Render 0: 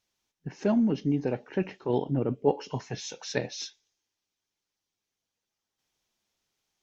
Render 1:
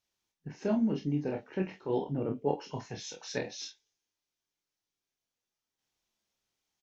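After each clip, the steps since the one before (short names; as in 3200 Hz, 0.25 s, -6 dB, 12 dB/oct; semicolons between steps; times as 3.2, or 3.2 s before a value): early reflections 27 ms -4 dB, 47 ms -9.5 dB; gain -6 dB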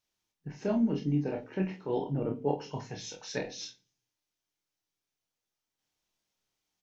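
shoebox room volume 290 m³, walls furnished, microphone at 0.51 m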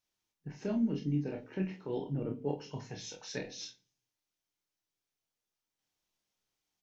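dynamic EQ 820 Hz, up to -7 dB, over -45 dBFS, Q 0.94; gain -2.5 dB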